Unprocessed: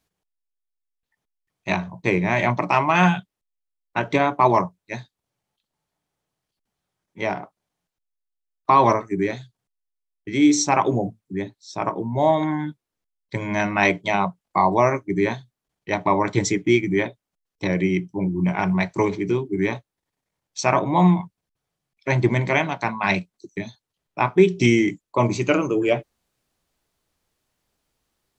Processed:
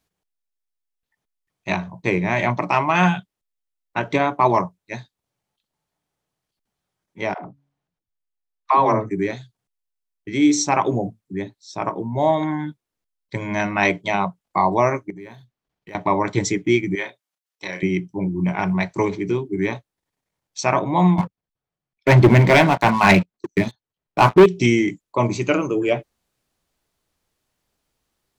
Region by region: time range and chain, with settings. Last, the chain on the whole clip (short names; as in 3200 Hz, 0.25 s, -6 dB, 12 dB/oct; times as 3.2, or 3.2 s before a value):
7.34–9.11 LPF 2400 Hz 6 dB/oct + de-hum 140.3 Hz, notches 2 + dispersion lows, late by 0.105 s, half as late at 320 Hz
15.1–15.95 median filter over 5 samples + compressor 4:1, threshold -38 dBFS
16.95–17.83 HPF 1300 Hz 6 dB/oct + doubler 32 ms -6 dB
21.18–24.46 high shelf 4500 Hz -12 dB + sample leveller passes 3
whole clip: dry